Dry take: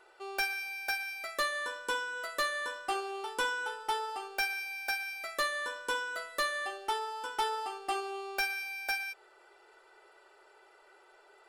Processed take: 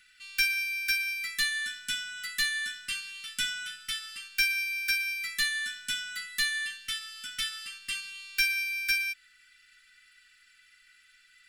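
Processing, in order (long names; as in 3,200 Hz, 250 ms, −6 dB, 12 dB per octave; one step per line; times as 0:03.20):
inverse Chebyshev band-stop filter 390–1,000 Hz, stop band 50 dB
level +8 dB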